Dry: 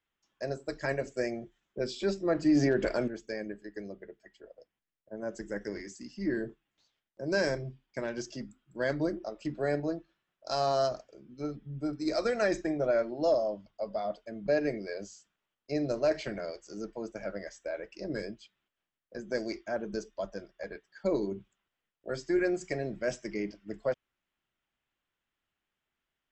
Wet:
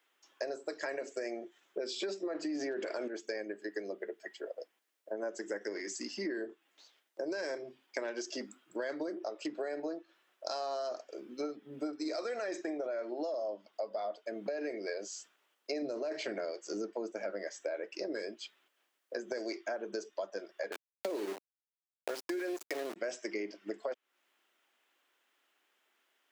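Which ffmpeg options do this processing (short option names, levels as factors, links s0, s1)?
-filter_complex "[0:a]asettb=1/sr,asplit=3[s0][s1][s2];[s0]atrim=end=15.824[s3];[s1]atrim=start=15.82:end=17.95,asetpts=PTS-STARTPTS,afade=t=in:d=0.004:c=qsin,afade=t=out:st=2.126:d=0.004:c=qsin,equalizer=f=65:w=0.31:g=13.5[s4];[s2]atrim=start=17.946[s5];[s3][s4]acrossfade=d=0.004:c1=hsin:c2=qsin[s6];[s6][s5]acrossfade=d=0.004:c1=qsin:c2=hsin,asettb=1/sr,asplit=3[s7][s8][s9];[s7]atrim=end=20.724[s10];[s8]atrim=start=20.72:end=22.96,asetpts=PTS-STARTPTS,afade=t=in:d=0.004:c=qsin,afade=t=out:st=2.236:d=0.004:c=qsin,aeval=exprs='val(0)*gte(abs(val(0)),0.0141)':c=same[s11];[s9]atrim=start=22.956[s12];[s10][s11]acrossfade=d=0.004:c1=hsin:c2=qsin[s13];[s13][s12]acrossfade=d=0.004:c1=qsin:c2=hsin,highpass=f=320:w=0.5412,highpass=f=320:w=1.3066,alimiter=level_in=1.33:limit=0.0631:level=0:latency=1:release=30,volume=0.75,acompressor=threshold=0.00447:ratio=6,volume=3.76"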